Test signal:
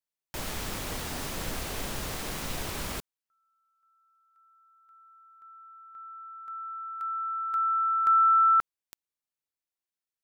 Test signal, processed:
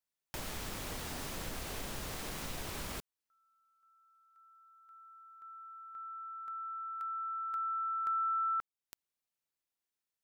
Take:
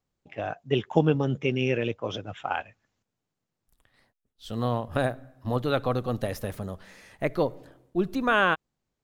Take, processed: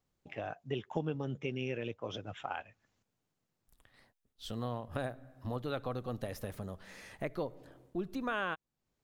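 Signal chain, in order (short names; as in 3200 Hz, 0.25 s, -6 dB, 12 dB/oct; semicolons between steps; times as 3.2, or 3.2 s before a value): compressor 2:1, threshold -43 dBFS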